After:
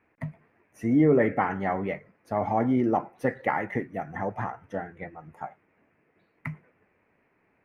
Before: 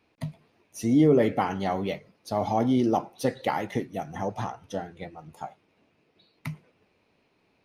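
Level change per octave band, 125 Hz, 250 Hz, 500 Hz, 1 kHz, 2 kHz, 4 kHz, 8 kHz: -1.0 dB, -1.0 dB, -0.5 dB, +0.5 dB, +5.0 dB, under -10 dB, under -15 dB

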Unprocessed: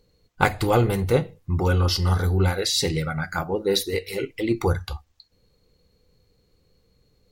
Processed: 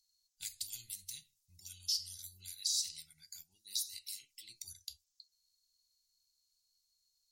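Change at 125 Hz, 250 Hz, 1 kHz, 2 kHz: under -40 dB, under -40 dB, under -40 dB, -33.5 dB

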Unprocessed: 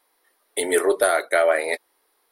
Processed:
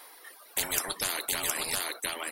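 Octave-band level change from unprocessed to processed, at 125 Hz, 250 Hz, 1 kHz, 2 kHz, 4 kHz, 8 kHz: no reading, -13.0 dB, -11.5 dB, -9.0 dB, +2.5 dB, 0.0 dB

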